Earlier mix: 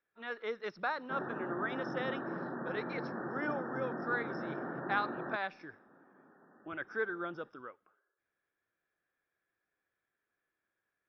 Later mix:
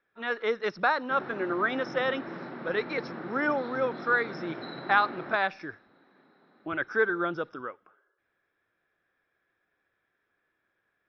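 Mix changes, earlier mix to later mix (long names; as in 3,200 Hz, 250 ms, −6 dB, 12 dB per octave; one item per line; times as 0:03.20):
speech +10.0 dB
background: remove linear-phase brick-wall low-pass 1,900 Hz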